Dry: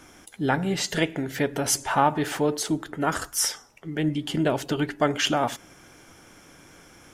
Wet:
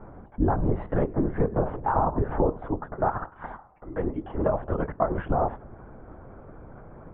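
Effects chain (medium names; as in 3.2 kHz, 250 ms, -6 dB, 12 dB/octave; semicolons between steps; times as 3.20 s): 2.50–5.11 s: high-pass 570 Hz 12 dB/octave; LPC vocoder at 8 kHz whisper; compression 12:1, threshold -27 dBFS, peak gain reduction 12.5 dB; low-pass 1.1 kHz 24 dB/octave; trim +8.5 dB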